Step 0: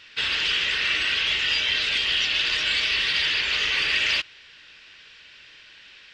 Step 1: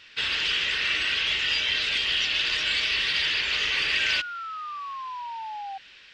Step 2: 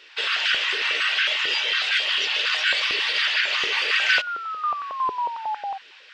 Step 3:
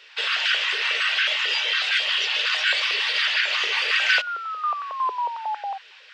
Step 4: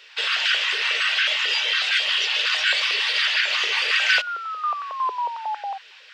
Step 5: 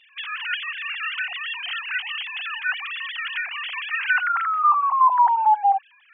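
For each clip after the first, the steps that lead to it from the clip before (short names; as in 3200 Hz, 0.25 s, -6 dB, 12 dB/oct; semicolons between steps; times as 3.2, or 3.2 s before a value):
painted sound fall, 3.99–5.78, 770–1600 Hz -33 dBFS; gain -2 dB
stepped high-pass 11 Hz 410–1500 Hz; gain +1 dB
HPF 430 Hz 24 dB/oct
high shelf 5600 Hz +5.5 dB
sine-wave speech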